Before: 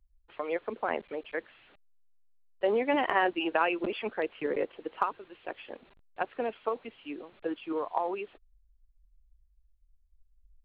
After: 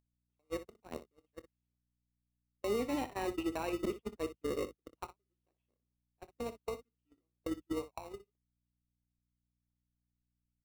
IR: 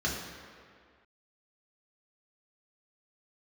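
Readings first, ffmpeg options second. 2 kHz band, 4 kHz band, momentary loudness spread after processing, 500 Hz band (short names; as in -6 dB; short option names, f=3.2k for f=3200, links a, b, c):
-15.5 dB, -8.5 dB, 17 LU, -8.0 dB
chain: -filter_complex "[0:a]equalizer=f=1.7k:t=o:w=2:g=-12.5,asplit=2[a][b];[b]acrusher=samples=27:mix=1:aa=0.000001,volume=-4.5dB[c];[a][c]amix=inputs=2:normalize=0,aeval=exprs='val(0)+0.00708*(sin(2*PI*60*n/s)+sin(2*PI*2*60*n/s)/2+sin(2*PI*3*60*n/s)/3+sin(2*PI*4*60*n/s)/4+sin(2*PI*5*60*n/s)/5)':c=same,equalizer=f=590:t=o:w=0.74:g=-3.5,acompressor=mode=upward:threshold=-36dB:ratio=2.5,agate=range=-53dB:threshold=-29dB:ratio=16:detection=peak,acompressor=threshold=-48dB:ratio=2,alimiter=level_in=13dB:limit=-24dB:level=0:latency=1:release=37,volume=-13dB,aecho=1:1:25|61:0.158|0.211,volume=10.5dB"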